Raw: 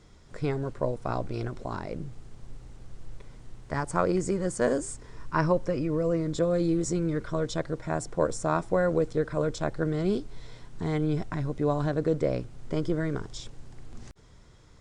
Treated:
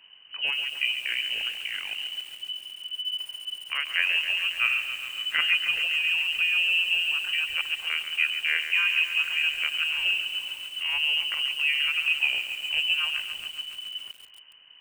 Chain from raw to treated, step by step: inverted band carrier 3000 Hz; lo-fi delay 0.138 s, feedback 80%, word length 7-bit, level -9.5 dB

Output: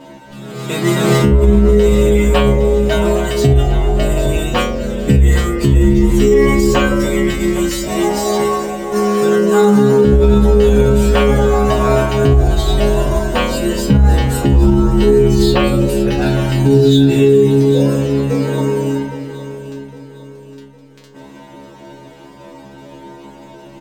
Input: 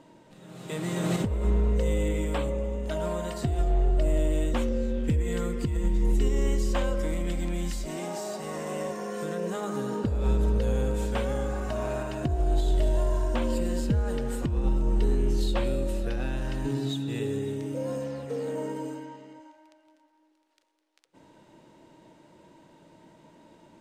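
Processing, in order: reverb removal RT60 0.5 s; 8.36–8.98 negative-ratio compressor -38 dBFS, ratio -0.5; metallic resonator 67 Hz, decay 0.85 s, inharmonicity 0.002; feedback echo 0.81 s, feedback 43%, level -14 dB; maximiser +33 dB; decimation joined by straight lines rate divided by 2×; gain -1 dB

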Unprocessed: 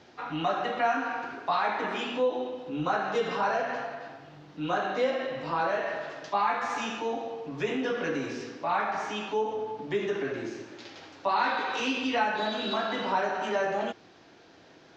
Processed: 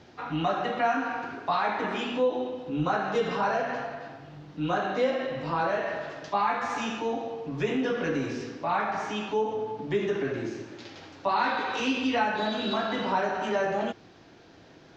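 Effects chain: low shelf 190 Hz +10 dB

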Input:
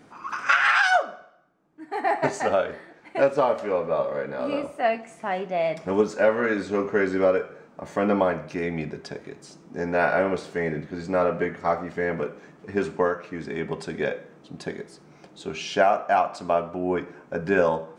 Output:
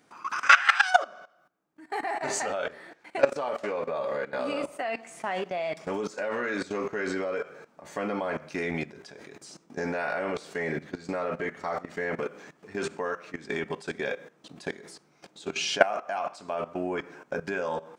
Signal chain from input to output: tilt +2 dB/oct; level quantiser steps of 17 dB; gain +4 dB

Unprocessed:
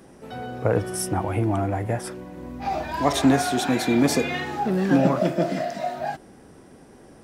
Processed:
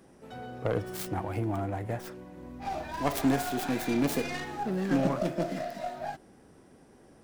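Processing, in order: tracing distortion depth 0.44 ms; gain -8 dB

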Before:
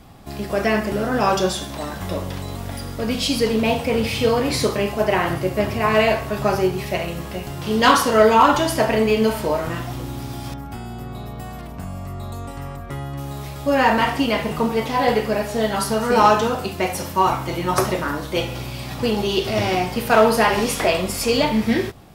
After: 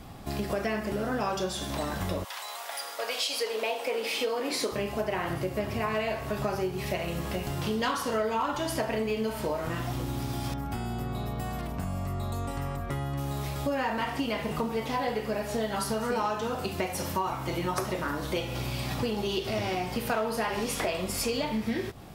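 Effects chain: 2.23–4.71 HPF 880 Hz -> 240 Hz 24 dB/oct; compressor 5:1, threshold -28 dBFS, peak gain reduction 17 dB

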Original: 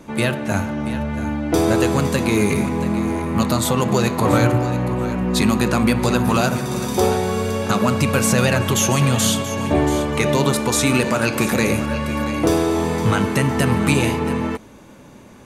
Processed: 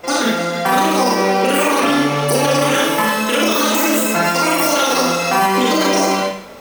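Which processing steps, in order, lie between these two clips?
speed mistake 33 rpm record played at 78 rpm; Schroeder reverb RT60 0.57 s, combs from 28 ms, DRR -5 dB; limiter -5.5 dBFS, peak gain reduction 7.5 dB

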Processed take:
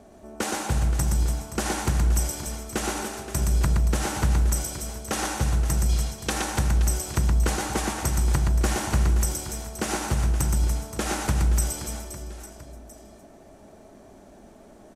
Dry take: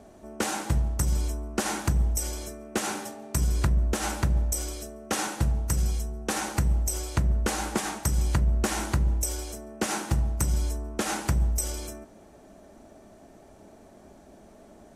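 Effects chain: 5.89–6.3 bell 3700 Hz +9 dB 1.8 oct; reverse bouncing-ball echo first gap 0.12 s, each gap 1.4×, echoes 5

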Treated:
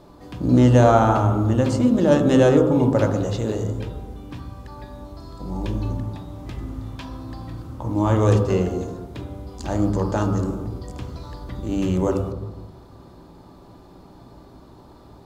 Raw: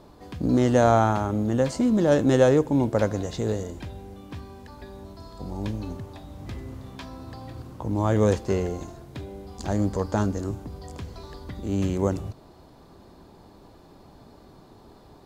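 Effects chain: dynamic EQ 2800 Hz, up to +6 dB, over -58 dBFS, Q 5.4; on a send: reverb RT60 1.2 s, pre-delay 3 ms, DRR 3.5 dB; on the sum: gain +1 dB

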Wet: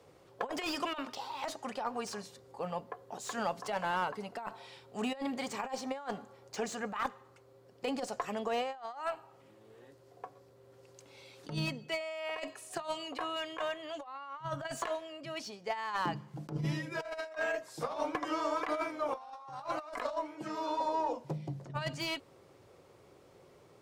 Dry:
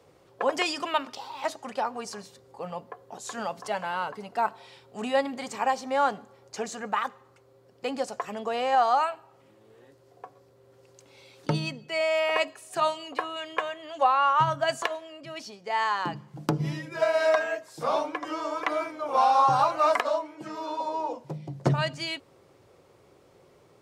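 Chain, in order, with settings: added harmonics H 6 -33 dB, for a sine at -10.5 dBFS; negative-ratio compressor -29 dBFS, ratio -0.5; slew limiter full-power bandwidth 110 Hz; gain -5.5 dB

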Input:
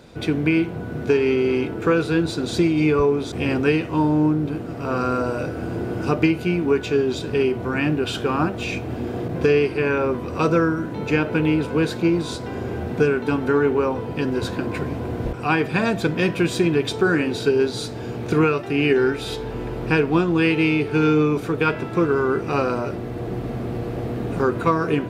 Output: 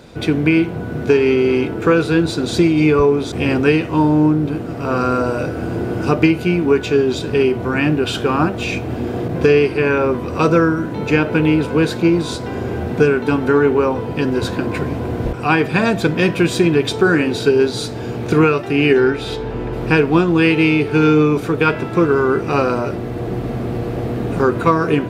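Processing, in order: 18.99–19.72 high shelf 7700 Hz -> 5400 Hz -11 dB; gain +5 dB

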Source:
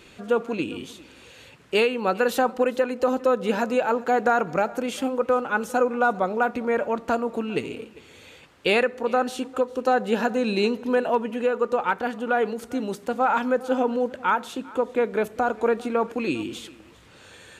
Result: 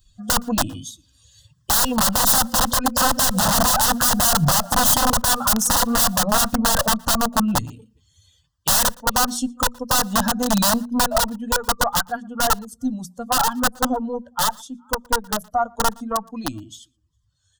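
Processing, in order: per-bin expansion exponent 2; Doppler pass-by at 3.86, 7 m/s, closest 7.5 m; notches 60/120/180/240 Hz; compressor 12:1, threshold -31 dBFS, peak gain reduction 12 dB; added harmonics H 5 -22 dB, 6 -17 dB, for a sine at -22.5 dBFS; wrapped overs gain 37 dB; fixed phaser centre 950 Hz, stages 4; outdoor echo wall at 20 m, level -29 dB; maximiser +34.5 dB; gain -5 dB

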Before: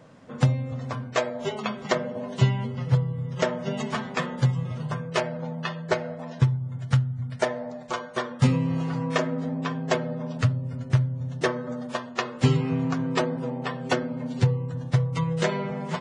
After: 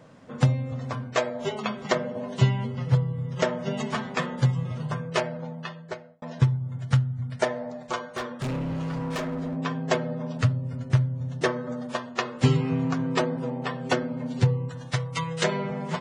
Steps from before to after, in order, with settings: 5.16–6.22 fade out; 8–9.57 overloaded stage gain 27 dB; 14.69–15.44 tilt shelf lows -7 dB, about 750 Hz

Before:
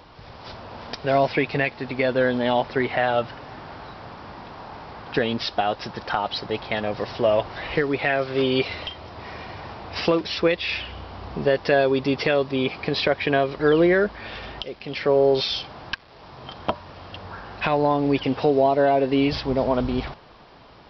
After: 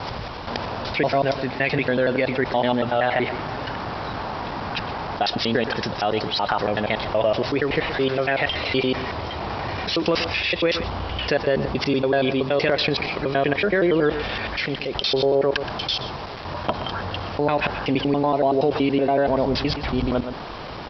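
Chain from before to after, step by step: slices in reverse order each 94 ms, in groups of 5; outdoor echo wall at 21 m, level -17 dB; fast leveller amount 50%; gain -2 dB

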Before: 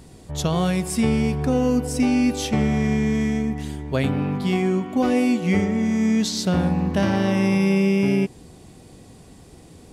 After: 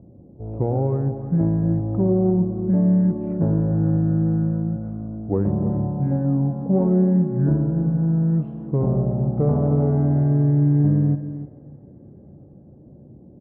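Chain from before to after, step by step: LPF 1100 Hz 24 dB/oct; low-pass opened by the level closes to 720 Hz, open at -16 dBFS; HPF 130 Hz 12 dB/oct; in parallel at -12 dB: soft clip -18 dBFS, distortion -15 dB; on the sum: echo 0.225 s -13 dB; on a send at -15 dB: reverb, pre-delay 3 ms; on the sum: speed mistake 45 rpm record played at 33 rpm

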